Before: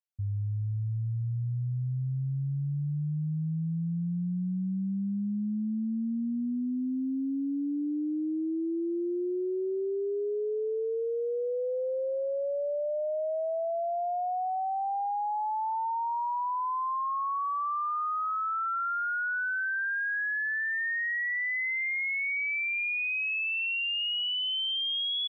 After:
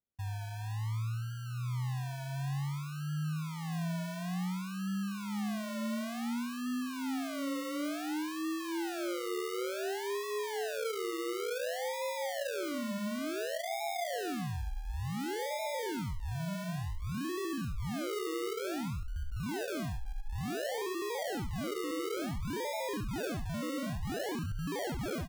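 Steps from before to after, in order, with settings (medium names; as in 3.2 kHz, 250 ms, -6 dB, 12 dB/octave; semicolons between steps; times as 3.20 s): decimation with a swept rate 42×, swing 60% 0.56 Hz; delay 72 ms -8 dB; trim -6 dB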